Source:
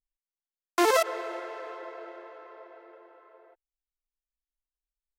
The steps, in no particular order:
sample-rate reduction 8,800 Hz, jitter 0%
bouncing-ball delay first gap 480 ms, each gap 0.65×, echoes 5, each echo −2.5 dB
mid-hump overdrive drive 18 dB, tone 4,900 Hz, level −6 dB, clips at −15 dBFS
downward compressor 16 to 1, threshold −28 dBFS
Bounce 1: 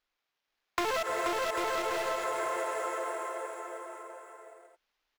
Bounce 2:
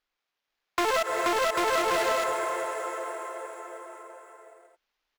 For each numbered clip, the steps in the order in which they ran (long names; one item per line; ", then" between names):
sample-rate reduction, then mid-hump overdrive, then bouncing-ball delay, then downward compressor
sample-rate reduction, then bouncing-ball delay, then downward compressor, then mid-hump overdrive